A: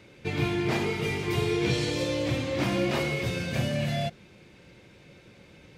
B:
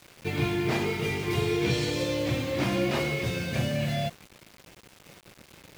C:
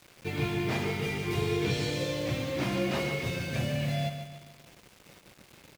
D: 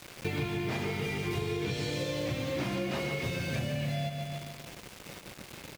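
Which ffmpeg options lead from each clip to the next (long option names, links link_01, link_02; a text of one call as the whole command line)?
ffmpeg -i in.wav -af "acrusher=bits=7:mix=0:aa=0.000001" out.wav
ffmpeg -i in.wav -af "aecho=1:1:144|288|432|576|720:0.355|0.167|0.0784|0.0368|0.0173,volume=-3.5dB" out.wav
ffmpeg -i in.wav -af "acompressor=threshold=-39dB:ratio=6,volume=8.5dB" out.wav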